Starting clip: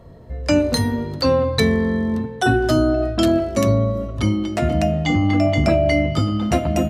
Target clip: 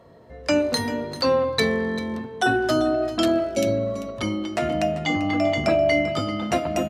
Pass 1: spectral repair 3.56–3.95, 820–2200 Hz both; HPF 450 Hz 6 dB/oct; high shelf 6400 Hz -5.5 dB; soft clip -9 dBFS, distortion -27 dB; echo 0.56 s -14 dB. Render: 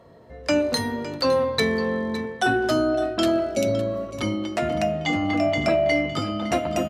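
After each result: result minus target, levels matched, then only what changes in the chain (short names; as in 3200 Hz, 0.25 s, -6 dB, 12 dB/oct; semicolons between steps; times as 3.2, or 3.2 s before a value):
soft clip: distortion +17 dB; echo 0.168 s late
change: soft clip 0 dBFS, distortion -44 dB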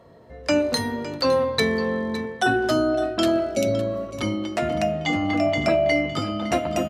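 echo 0.168 s late
change: echo 0.392 s -14 dB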